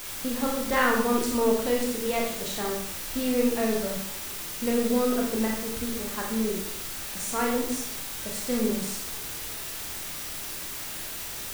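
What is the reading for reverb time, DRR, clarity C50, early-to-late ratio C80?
0.70 s, -1.5 dB, 3.5 dB, 6.5 dB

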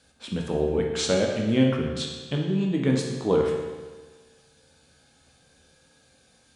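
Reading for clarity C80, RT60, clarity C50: 4.5 dB, 1.4 s, 2.5 dB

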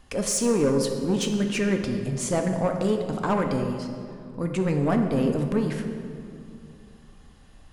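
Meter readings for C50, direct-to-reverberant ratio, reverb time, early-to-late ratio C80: 6.0 dB, 4.0 dB, 2.4 s, 7.0 dB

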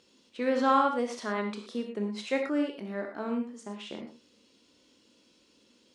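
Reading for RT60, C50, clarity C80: no single decay rate, 6.0 dB, 8.5 dB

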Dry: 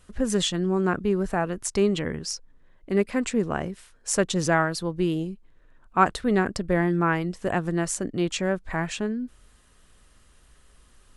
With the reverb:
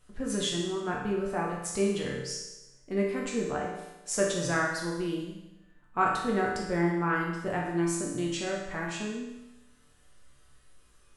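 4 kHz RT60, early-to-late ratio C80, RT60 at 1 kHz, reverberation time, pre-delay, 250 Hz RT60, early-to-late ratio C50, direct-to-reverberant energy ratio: 1.0 s, 5.0 dB, 1.0 s, 1.0 s, 7 ms, 1.0 s, 2.0 dB, -3.5 dB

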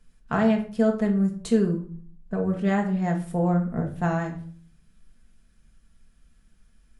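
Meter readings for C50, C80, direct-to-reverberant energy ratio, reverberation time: 9.5 dB, 15.0 dB, -0.5 dB, 0.50 s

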